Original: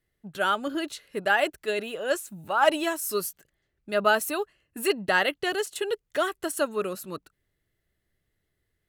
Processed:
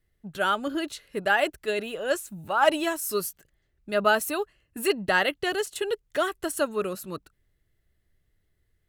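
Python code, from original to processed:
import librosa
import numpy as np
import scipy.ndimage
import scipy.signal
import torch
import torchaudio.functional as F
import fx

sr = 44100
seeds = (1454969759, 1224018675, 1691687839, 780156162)

y = fx.low_shelf(x, sr, hz=85.0, db=11.5)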